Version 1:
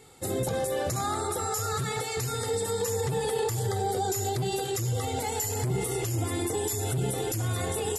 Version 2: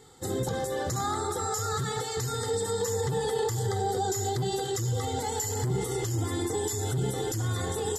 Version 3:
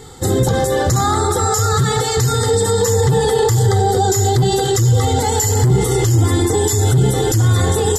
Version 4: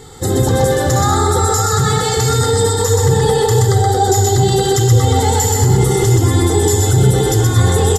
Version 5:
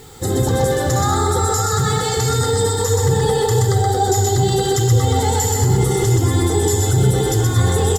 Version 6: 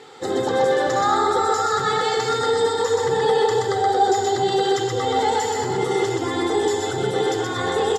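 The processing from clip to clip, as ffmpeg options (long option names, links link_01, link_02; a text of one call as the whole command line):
ffmpeg -i in.wav -af "superequalizer=8b=0.501:12b=0.316:16b=0.398,areverse,acompressor=mode=upward:threshold=-45dB:ratio=2.5,areverse" out.wav
ffmpeg -i in.wav -filter_complex "[0:a]lowshelf=frequency=96:gain=10.5,asplit=2[link_01][link_02];[link_02]alimiter=level_in=0.5dB:limit=-24dB:level=0:latency=1,volume=-0.5dB,volume=2dB[link_03];[link_01][link_03]amix=inputs=2:normalize=0,volume=8dB" out.wav
ffmpeg -i in.wav -af "aecho=1:1:125.4|230.3:0.708|0.251" out.wav
ffmpeg -i in.wav -af "acrusher=bits=6:mix=0:aa=0.000001,volume=-3.5dB" out.wav
ffmpeg -i in.wav -af "highpass=380,lowpass=3700,volume=1.5dB" out.wav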